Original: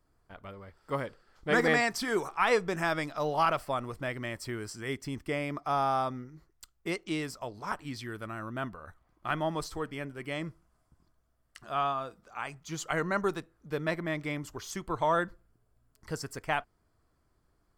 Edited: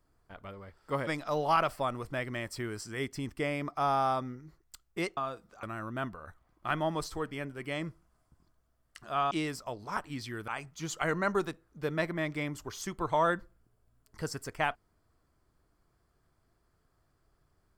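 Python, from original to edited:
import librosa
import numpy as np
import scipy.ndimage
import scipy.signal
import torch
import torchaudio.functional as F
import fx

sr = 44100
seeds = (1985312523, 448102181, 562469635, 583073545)

y = fx.edit(x, sr, fx.cut(start_s=1.07, length_s=1.89),
    fx.swap(start_s=7.06, length_s=1.17, other_s=11.91, other_length_s=0.46), tone=tone)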